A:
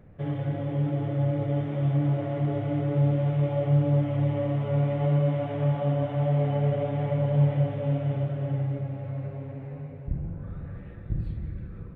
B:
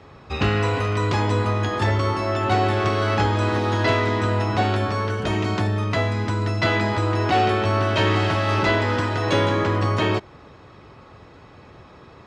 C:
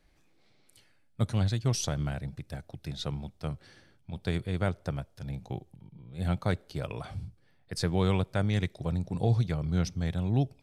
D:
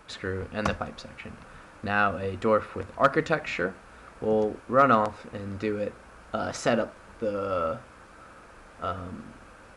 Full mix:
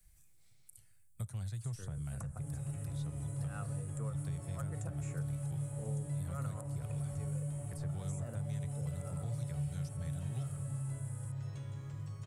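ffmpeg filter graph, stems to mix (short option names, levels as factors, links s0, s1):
-filter_complex "[0:a]adelay=2200,volume=0.708[s0];[1:a]acrossover=split=2300|5300[s1][s2][s3];[s1]acompressor=threshold=0.0891:ratio=4[s4];[s2]acompressor=threshold=0.01:ratio=4[s5];[s3]acompressor=threshold=0.00141:ratio=4[s6];[s4][s5][s6]amix=inputs=3:normalize=0,adelay=2250,volume=0.158[s7];[2:a]equalizer=f=1800:t=o:w=2.2:g=5.5,acrossover=split=560|3800[s8][s9][s10];[s8]acompressor=threshold=0.0282:ratio=4[s11];[s9]acompressor=threshold=0.00891:ratio=4[s12];[s10]acompressor=threshold=0.00178:ratio=4[s13];[s11][s12][s13]amix=inputs=3:normalize=0,volume=1.33,asplit=2[s14][s15];[3:a]highshelf=f=6300:t=q:w=1.5:g=10.5,adelay=1550,volume=0.75[s16];[s15]apad=whole_len=499125[s17];[s16][s17]sidechaincompress=threshold=0.0158:ratio=8:attack=7.3:release=104[s18];[s0][s7][s14][s18]amix=inputs=4:normalize=0,firequalizer=gain_entry='entry(120,0);entry(240,-20);entry(4400,-11);entry(8000,11)':delay=0.05:min_phase=1,acrossover=split=93|190|1600[s19][s20][s21][s22];[s19]acompressor=threshold=0.00282:ratio=4[s23];[s20]acompressor=threshold=0.00708:ratio=4[s24];[s21]acompressor=threshold=0.00708:ratio=4[s25];[s22]acompressor=threshold=0.00178:ratio=4[s26];[s23][s24][s25][s26]amix=inputs=4:normalize=0"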